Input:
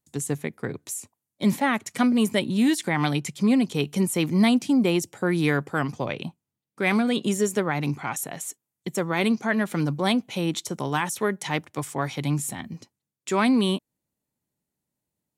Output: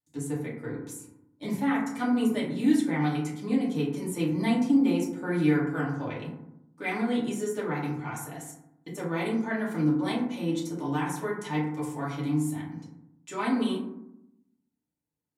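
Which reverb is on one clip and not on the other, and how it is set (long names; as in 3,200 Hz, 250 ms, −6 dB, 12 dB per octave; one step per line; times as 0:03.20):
feedback delay network reverb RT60 0.81 s, low-frequency decay 1.4×, high-frequency decay 0.35×, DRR −7 dB
level −14.5 dB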